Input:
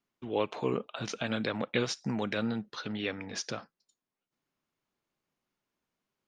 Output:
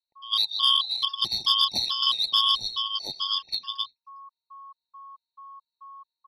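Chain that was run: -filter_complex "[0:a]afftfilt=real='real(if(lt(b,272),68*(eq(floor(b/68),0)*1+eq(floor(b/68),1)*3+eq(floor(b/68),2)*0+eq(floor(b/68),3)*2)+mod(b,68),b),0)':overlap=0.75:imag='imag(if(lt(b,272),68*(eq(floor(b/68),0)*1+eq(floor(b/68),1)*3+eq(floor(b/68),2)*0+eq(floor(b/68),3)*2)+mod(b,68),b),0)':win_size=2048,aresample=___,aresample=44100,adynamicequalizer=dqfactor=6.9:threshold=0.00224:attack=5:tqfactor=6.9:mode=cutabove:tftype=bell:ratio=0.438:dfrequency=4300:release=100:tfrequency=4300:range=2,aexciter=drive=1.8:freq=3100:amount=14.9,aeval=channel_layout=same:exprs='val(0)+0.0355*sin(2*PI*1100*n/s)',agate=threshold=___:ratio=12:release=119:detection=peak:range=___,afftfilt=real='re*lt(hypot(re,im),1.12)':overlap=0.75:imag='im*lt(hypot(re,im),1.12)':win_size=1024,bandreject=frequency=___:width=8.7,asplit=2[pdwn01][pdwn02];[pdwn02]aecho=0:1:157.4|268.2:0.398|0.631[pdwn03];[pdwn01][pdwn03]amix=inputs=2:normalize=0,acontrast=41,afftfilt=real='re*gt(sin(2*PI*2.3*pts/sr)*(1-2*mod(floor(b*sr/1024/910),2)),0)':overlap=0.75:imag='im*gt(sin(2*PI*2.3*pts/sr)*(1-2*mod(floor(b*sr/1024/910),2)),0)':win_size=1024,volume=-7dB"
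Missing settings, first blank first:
11025, -19dB, -16dB, 960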